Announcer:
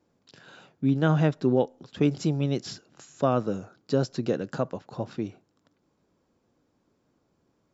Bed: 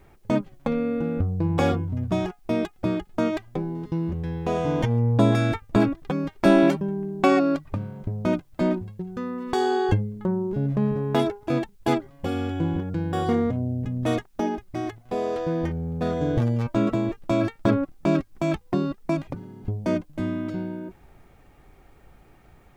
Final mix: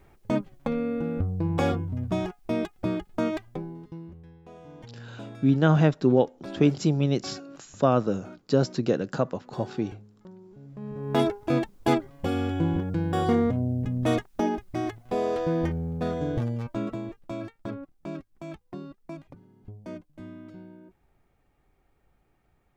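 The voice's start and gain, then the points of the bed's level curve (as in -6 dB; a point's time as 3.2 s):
4.60 s, +2.5 dB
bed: 3.43 s -3 dB
4.42 s -22.5 dB
10.65 s -22.5 dB
11.21 s 0 dB
15.66 s 0 dB
17.69 s -15 dB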